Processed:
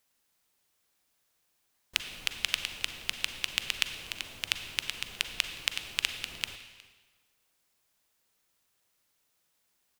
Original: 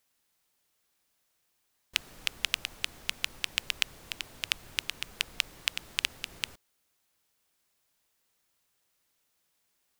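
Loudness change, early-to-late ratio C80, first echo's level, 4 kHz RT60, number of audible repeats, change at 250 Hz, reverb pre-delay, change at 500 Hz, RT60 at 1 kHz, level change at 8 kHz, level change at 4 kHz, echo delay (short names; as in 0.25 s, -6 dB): +0.5 dB, 10.0 dB, -23.0 dB, 1.2 s, 1, +0.5 dB, 36 ms, +0.5 dB, 1.4 s, +0.5 dB, +0.5 dB, 0.363 s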